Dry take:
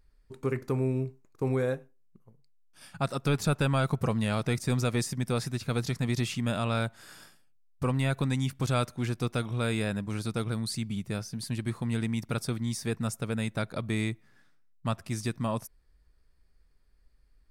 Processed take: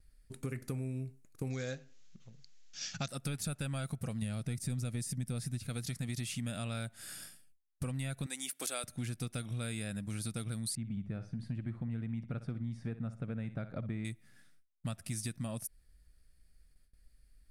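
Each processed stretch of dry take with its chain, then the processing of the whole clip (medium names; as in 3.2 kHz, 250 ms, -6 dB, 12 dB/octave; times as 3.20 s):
1.50–3.08 s: treble shelf 2.4 kHz +12 dB + upward compressor, threshold -47 dBFS + careless resampling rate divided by 3×, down none, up filtered
4.22–5.67 s: bass shelf 340 Hz +8.5 dB + upward compressor, threshold -26 dBFS
8.26–8.84 s: high-pass 350 Hz 24 dB/octave + treble shelf 9.1 kHz +9 dB
10.75–14.05 s: low-pass 1.4 kHz + feedback delay 61 ms, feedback 26%, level -14 dB
whole clip: gate with hold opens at -57 dBFS; fifteen-band graphic EQ 400 Hz -8 dB, 1 kHz -12 dB, 10 kHz +11 dB; compression 6:1, threshold -36 dBFS; trim +1 dB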